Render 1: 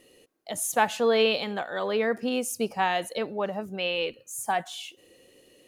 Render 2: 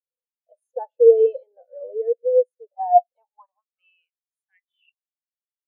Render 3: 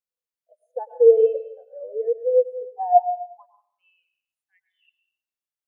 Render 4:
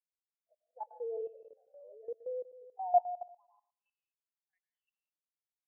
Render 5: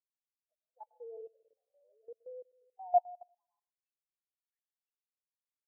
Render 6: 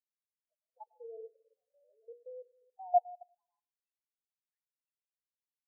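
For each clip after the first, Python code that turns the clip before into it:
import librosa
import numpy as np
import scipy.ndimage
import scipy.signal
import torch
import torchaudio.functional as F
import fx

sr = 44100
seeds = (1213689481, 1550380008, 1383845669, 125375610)

y1 = fx.filter_sweep_highpass(x, sr, from_hz=510.0, to_hz=2700.0, start_s=2.52, end_s=4.87, q=7.6)
y1 = fx.spectral_expand(y1, sr, expansion=2.5)
y2 = fx.rev_plate(y1, sr, seeds[0], rt60_s=0.62, hf_ratio=1.0, predelay_ms=95, drr_db=10.0)
y2 = F.gain(torch.from_numpy(y2), -1.0).numpy()
y3 = fx.bandpass_q(y2, sr, hz=840.0, q=2.5)
y3 = fx.level_steps(y3, sr, step_db=16)
y3 = F.gain(torch.from_numpy(y3), -5.0).numpy()
y4 = fx.upward_expand(y3, sr, threshold_db=-58.0, expansion=1.5)
y5 = fx.hum_notches(y4, sr, base_hz=60, count=8)
y5 = fx.spec_topn(y5, sr, count=8)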